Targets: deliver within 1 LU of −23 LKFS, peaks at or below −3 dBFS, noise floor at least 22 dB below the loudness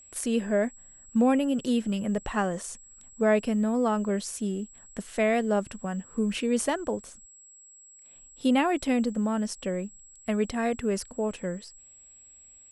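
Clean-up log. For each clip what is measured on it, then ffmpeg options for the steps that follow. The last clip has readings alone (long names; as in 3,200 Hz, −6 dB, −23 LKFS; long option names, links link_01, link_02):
interfering tone 7,700 Hz; level of the tone −50 dBFS; integrated loudness −28.0 LKFS; sample peak −12.5 dBFS; target loudness −23.0 LKFS
→ -af "bandreject=frequency=7700:width=30"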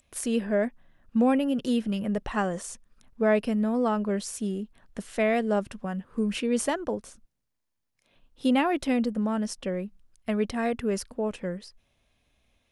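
interfering tone none found; integrated loudness −28.0 LKFS; sample peak −12.5 dBFS; target loudness −23.0 LKFS
→ -af "volume=5dB"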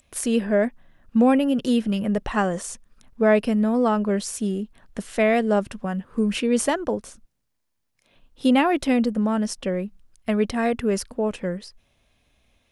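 integrated loudness −23.0 LKFS; sample peak −7.5 dBFS; background noise floor −74 dBFS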